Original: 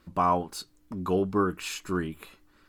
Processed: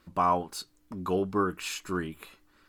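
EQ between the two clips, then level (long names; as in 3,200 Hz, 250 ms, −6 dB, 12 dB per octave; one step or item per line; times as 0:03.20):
low-shelf EQ 420 Hz −4 dB
0.0 dB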